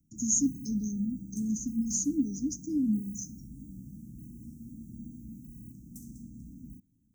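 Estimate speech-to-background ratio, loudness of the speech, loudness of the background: 15.5 dB, −30.5 LKFS, −46.0 LKFS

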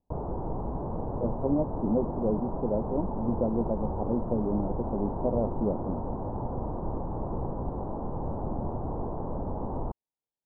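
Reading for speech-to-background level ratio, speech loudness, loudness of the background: 4.0 dB, −31.0 LKFS, −35.0 LKFS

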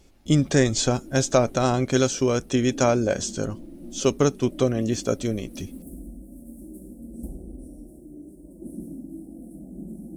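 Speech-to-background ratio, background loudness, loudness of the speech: 18.5 dB, −41.5 LKFS, −23.0 LKFS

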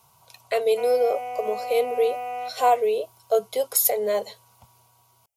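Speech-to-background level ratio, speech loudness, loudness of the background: 9.5 dB, −23.5 LKFS, −33.0 LKFS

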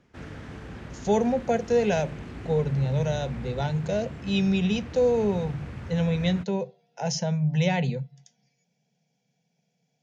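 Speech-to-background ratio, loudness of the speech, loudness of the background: 13.0 dB, −26.5 LKFS, −39.5 LKFS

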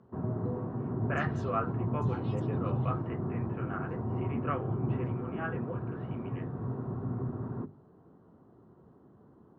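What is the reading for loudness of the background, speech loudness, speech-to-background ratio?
−35.0 LKFS, −39.5 LKFS, −4.5 dB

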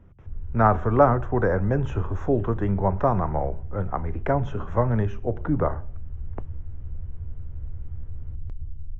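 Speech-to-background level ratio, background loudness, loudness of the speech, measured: 14.5 dB, −39.0 LKFS, −24.5 LKFS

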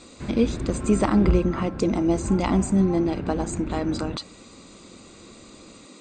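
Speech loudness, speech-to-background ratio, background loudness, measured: −24.0 LKFS, 7.0 dB, −31.0 LKFS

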